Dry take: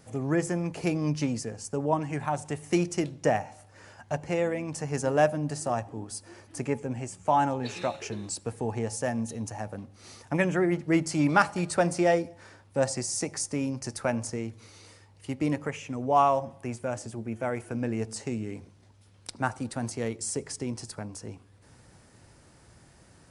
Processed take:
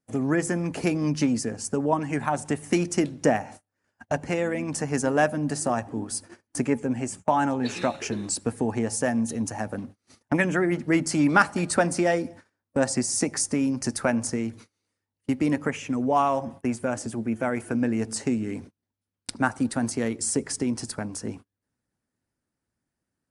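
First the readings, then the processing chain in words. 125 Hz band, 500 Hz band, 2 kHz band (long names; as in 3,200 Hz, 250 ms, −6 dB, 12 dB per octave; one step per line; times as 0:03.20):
+1.0 dB, +1.5 dB, +5.0 dB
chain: graphic EQ with 15 bands 250 Hz +9 dB, 1,600 Hz +4 dB, 10,000 Hz +3 dB
noise gate −43 dBFS, range −33 dB
harmonic and percussive parts rebalanced harmonic −5 dB
in parallel at −1 dB: downward compressor, threshold −29 dBFS, peak gain reduction 14.5 dB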